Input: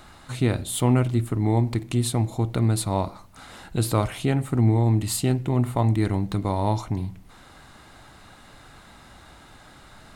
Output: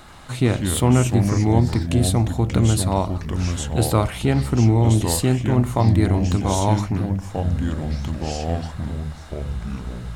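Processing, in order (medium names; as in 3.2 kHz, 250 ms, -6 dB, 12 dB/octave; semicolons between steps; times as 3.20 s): ever faster or slower copies 86 ms, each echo -4 st, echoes 3, each echo -6 dB; trim +3.5 dB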